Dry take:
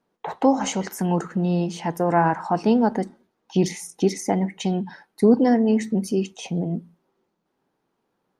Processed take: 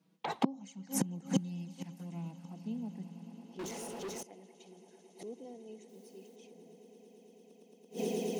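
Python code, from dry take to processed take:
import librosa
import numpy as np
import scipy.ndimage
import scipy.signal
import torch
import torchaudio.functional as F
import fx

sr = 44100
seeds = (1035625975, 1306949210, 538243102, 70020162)

p1 = fx.envelope_flatten(x, sr, power=0.6, at=(1.33, 2.3), fade=0.02)
p2 = fx.env_flanger(p1, sr, rest_ms=6.2, full_db=-16.5)
p3 = fx.quant_dither(p2, sr, seeds[0], bits=8, dither='triangular', at=(5.88, 6.35), fade=0.02)
p4 = fx.band_shelf(p3, sr, hz=750.0, db=-8.5, octaves=2.8)
p5 = p4 + fx.echo_swell(p4, sr, ms=111, loudest=8, wet_db=-16, dry=0)
p6 = fx.gate_flip(p5, sr, shuts_db=-23.0, range_db=-29)
p7 = fx.filter_sweep_highpass(p6, sr, from_hz=180.0, to_hz=440.0, start_s=3.2, end_s=3.77, q=2.1)
p8 = fx.leveller(p7, sr, passes=5, at=(3.59, 4.23))
y = p8 * librosa.db_to_amplitude(5.0)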